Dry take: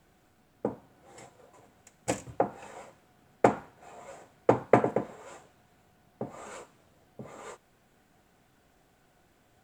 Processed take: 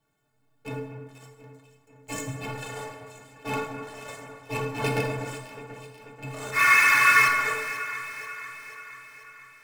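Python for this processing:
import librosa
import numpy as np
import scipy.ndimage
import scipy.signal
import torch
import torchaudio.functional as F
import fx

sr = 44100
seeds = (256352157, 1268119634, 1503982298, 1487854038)

p1 = fx.rattle_buzz(x, sr, strikes_db=-35.0, level_db=-16.0)
p2 = fx.spec_paint(p1, sr, seeds[0], shape='noise', start_s=6.51, length_s=0.77, low_hz=970.0, high_hz=2600.0, level_db=-15.0)
p3 = fx.fuzz(p2, sr, gain_db=39.0, gate_db=-47.0)
p4 = p2 + (p3 * librosa.db_to_amplitude(-3.0))
p5 = fx.stiff_resonator(p4, sr, f0_hz=130.0, decay_s=0.26, stiffness=0.03)
p6 = fx.auto_swell(p5, sr, attack_ms=104.0)
p7 = p6 + fx.echo_alternate(p6, sr, ms=244, hz=2400.0, feedback_pct=75, wet_db=-10.5, dry=0)
y = fx.rev_plate(p7, sr, seeds[1], rt60_s=1.3, hf_ratio=0.6, predelay_ms=0, drr_db=2.0)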